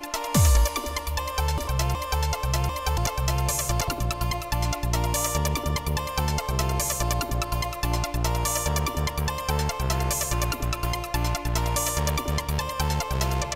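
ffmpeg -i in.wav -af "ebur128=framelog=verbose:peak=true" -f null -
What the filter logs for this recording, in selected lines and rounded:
Integrated loudness:
  I:         -26.0 LUFS
  Threshold: -36.0 LUFS
Loudness range:
  LRA:         0.5 LU
  Threshold: -46.2 LUFS
  LRA low:   -26.5 LUFS
  LRA high:  -25.9 LUFS
True peak:
  Peak:       -9.9 dBFS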